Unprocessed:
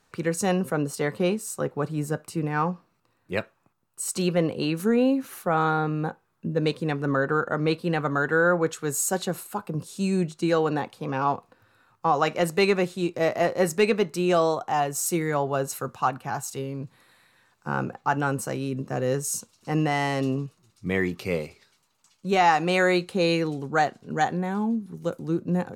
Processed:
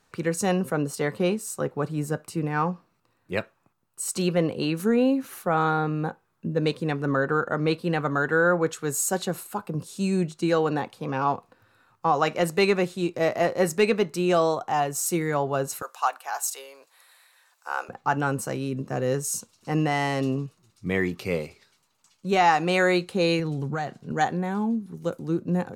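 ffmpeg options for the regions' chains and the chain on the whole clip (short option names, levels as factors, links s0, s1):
-filter_complex "[0:a]asettb=1/sr,asplit=3[s0][s1][s2];[s0]atrim=end=15.824[s3];[s1]atrim=start=15.82:end=17.89,asetpts=PTS-STARTPTS,afade=t=in:d=0.004:c=qsin,afade=t=out:st=2.066:d=0.004:c=qsin,highpass=f=580:w=0.5412,highpass=f=580:w=1.3066,aemphasis=mode=production:type=cd[s4];[s2]atrim=start=17.886[s5];[s3][s4]acrossfade=d=0.004:c1=hsin:c2=qsin[s6];[s6][s5]acrossfade=d=0.004:c1=qsin:c2=hsin,asettb=1/sr,asplit=3[s7][s8][s9];[s7]atrim=end=23.394[s10];[s8]atrim=start=23.39:end=24.12,asetpts=PTS-STARTPTS,afade=t=in:d=0.004:c=qsin,afade=t=out:st=0.726:d=0.004:c=qsin,equalizer=f=150:w=1.9:g=8.5,acompressor=threshold=0.0631:ratio=6:attack=3.2:release=140:knee=1:detection=peak[s11];[s9]atrim=start=24.116[s12];[s10][s11]acrossfade=d=0.004:c1=hsin:c2=qsin[s13];[s13][s12]acrossfade=d=0.004:c1=qsin:c2=hsin"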